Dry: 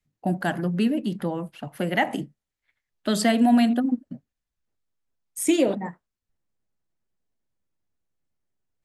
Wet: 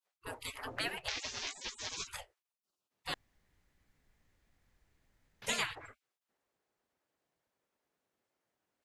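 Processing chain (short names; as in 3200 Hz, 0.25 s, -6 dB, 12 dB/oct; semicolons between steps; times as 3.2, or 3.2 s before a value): 1.08–2.07 delta modulation 32 kbps, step -19.5 dBFS; dynamic EQ 1300 Hz, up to +5 dB, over -45 dBFS, Q 4.5; spectral gate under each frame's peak -30 dB weak; 3.14–5.42 room tone; high shelf 3400 Hz -9.5 dB; gain +9 dB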